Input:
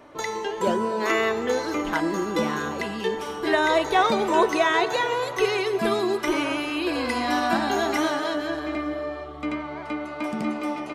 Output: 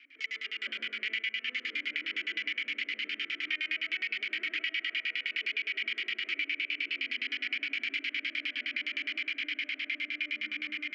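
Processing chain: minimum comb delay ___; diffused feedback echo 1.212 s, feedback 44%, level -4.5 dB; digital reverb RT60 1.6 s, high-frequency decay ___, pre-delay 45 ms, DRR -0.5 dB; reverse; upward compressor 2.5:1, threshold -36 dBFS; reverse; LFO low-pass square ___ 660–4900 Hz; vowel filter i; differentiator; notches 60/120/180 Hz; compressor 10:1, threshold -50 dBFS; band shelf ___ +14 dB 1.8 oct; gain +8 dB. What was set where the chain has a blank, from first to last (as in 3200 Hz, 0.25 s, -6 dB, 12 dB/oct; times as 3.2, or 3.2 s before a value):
0.4 ms, 0.85×, 9.7 Hz, 1800 Hz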